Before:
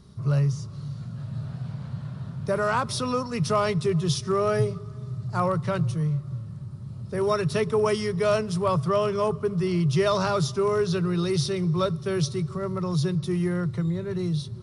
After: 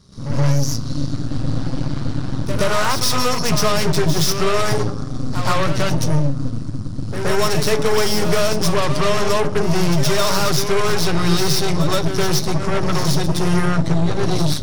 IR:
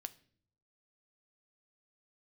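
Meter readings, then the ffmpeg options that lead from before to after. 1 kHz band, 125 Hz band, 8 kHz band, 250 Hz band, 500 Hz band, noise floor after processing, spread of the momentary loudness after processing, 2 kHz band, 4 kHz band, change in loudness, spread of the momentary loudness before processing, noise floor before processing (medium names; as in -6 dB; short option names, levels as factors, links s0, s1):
+7.0 dB, +6.0 dB, +14.5 dB, +6.5 dB, +4.5 dB, -24 dBFS, 7 LU, +10.5 dB, +13.0 dB, +6.5 dB, 11 LU, -39 dBFS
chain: -filter_complex "[0:a]equalizer=f=5600:w=1.3:g=9.5,bandreject=f=60:t=h:w=6,bandreject=f=120:t=h:w=6,bandreject=f=180:t=h:w=6,bandreject=f=240:t=h:w=6,bandreject=f=300:t=h:w=6,bandreject=f=360:t=h:w=6,bandreject=f=420:t=h:w=6,acompressor=threshold=0.0562:ratio=6,aeval=exprs='0.119*(cos(1*acos(clip(val(0)/0.119,-1,1)))-cos(1*PI/2))+0.0266*(cos(8*acos(clip(val(0)/0.119,-1,1)))-cos(8*PI/2))':c=same,asplit=2[s0][s1];[1:a]atrim=start_sample=2205,adelay=121[s2];[s1][s2]afir=irnorm=-1:irlink=0,volume=4.22[s3];[s0][s3]amix=inputs=2:normalize=0"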